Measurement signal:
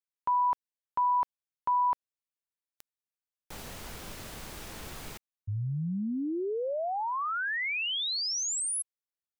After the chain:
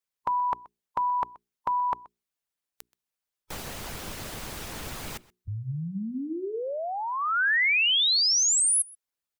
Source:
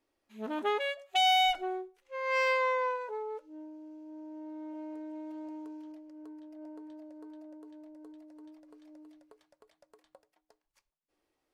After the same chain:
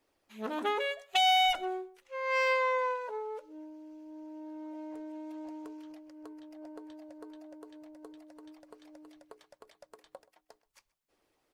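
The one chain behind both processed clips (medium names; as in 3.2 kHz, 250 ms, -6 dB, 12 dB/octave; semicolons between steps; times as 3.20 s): hum notches 60/120/180/240/300/360/420 Hz; harmonic-percussive split percussive +9 dB; echo from a far wall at 22 m, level -22 dB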